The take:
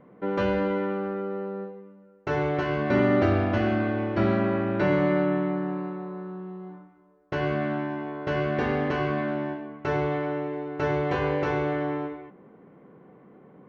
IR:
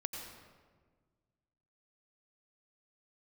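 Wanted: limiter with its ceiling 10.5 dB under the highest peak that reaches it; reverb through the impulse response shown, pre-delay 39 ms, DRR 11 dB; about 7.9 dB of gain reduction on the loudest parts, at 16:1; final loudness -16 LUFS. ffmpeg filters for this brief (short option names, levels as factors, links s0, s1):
-filter_complex "[0:a]acompressor=threshold=0.0562:ratio=16,alimiter=level_in=1.5:limit=0.0631:level=0:latency=1,volume=0.668,asplit=2[s0][s1];[1:a]atrim=start_sample=2205,adelay=39[s2];[s1][s2]afir=irnorm=-1:irlink=0,volume=0.282[s3];[s0][s3]amix=inputs=2:normalize=0,volume=10"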